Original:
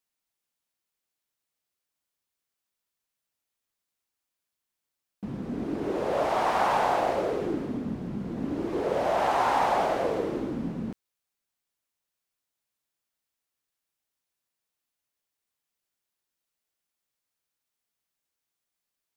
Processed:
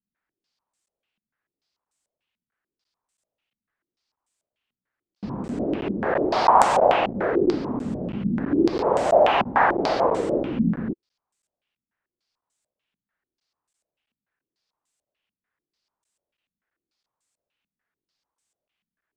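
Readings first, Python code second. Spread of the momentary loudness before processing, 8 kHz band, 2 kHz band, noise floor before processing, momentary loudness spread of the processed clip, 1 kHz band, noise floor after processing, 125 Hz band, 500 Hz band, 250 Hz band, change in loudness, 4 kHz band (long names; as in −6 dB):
11 LU, +5.5 dB, +6.0 dB, below −85 dBFS, 12 LU, +5.5 dB, below −85 dBFS, +6.0 dB, +6.5 dB, +7.0 dB, +6.0 dB, +6.0 dB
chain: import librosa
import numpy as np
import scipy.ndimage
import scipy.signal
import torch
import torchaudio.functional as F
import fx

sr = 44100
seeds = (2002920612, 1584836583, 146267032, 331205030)

y = fx.buffer_crackle(x, sr, first_s=0.86, period_s=0.33, block=512, kind='zero')
y = fx.filter_held_lowpass(y, sr, hz=6.8, low_hz=210.0, high_hz=8000.0)
y = y * librosa.db_to_amplitude(3.5)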